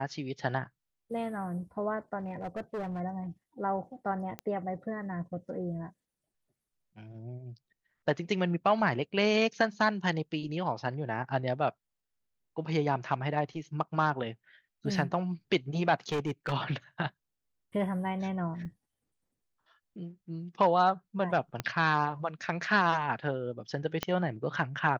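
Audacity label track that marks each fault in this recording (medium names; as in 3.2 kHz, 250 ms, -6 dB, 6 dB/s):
2.200000	3.010000	clipped -32.5 dBFS
4.390000	4.390000	pop -22 dBFS
16.090000	16.530000	clipped -27 dBFS
18.650000	18.650000	dropout 3.9 ms
21.600000	21.600000	pop -17 dBFS
24.030000	24.030000	pop -14 dBFS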